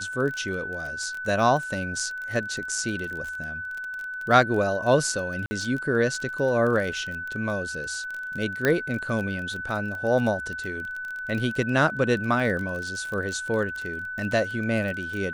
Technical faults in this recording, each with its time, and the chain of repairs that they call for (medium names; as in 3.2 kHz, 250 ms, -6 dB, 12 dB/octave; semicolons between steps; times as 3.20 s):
crackle 25 per s -30 dBFS
whine 1.5 kHz -31 dBFS
5.46–5.51 s: dropout 50 ms
8.65 s: pop -9 dBFS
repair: de-click; band-stop 1.5 kHz, Q 30; interpolate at 5.46 s, 50 ms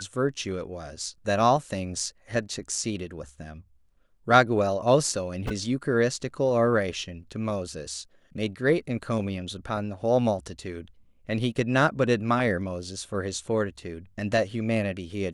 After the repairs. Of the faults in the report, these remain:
nothing left